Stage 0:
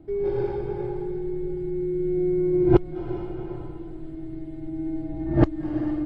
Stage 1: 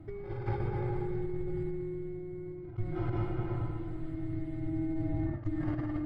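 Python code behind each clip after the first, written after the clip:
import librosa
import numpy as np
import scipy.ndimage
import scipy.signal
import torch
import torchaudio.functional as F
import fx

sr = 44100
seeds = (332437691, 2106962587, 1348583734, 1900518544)

y = fx.peak_eq(x, sr, hz=110.0, db=6.5, octaves=0.22)
y = fx.over_compress(y, sr, threshold_db=-29.0, ratio=-1.0)
y = fx.graphic_eq_31(y, sr, hz=(100, 400, 1250, 2000), db=(11, -9, 8, 8))
y = y * librosa.db_to_amplitude(-4.5)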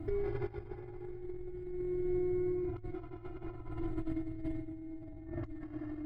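y = fx.over_compress(x, sr, threshold_db=-39.0, ratio=-0.5)
y = y + 0.63 * np.pad(y, (int(2.9 * sr / 1000.0), 0))[:len(y)]
y = y * librosa.db_to_amplitude(-1.0)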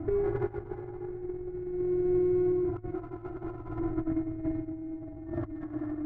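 y = scipy.signal.sosfilt(scipy.signal.butter(4, 1700.0, 'lowpass', fs=sr, output='sos'), x)
y = fx.low_shelf(y, sr, hz=93.0, db=-8.0)
y = fx.running_max(y, sr, window=3)
y = y * librosa.db_to_amplitude(8.0)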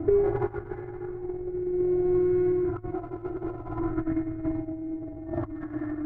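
y = fx.bell_lfo(x, sr, hz=0.6, low_hz=430.0, high_hz=1800.0, db=7)
y = y * librosa.db_to_amplitude(2.5)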